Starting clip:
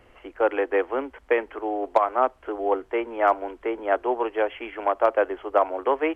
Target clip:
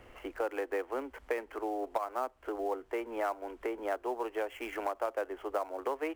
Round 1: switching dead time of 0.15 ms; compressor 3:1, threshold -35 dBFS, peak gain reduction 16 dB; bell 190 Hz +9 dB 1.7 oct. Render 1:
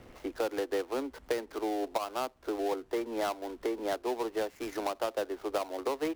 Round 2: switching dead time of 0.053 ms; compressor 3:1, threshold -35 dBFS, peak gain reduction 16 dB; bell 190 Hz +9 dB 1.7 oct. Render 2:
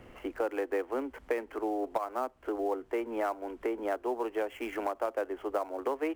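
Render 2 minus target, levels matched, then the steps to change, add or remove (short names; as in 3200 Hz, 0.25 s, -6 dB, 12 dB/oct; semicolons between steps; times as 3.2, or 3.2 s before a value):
250 Hz band +3.0 dB
remove: bell 190 Hz +9 dB 1.7 oct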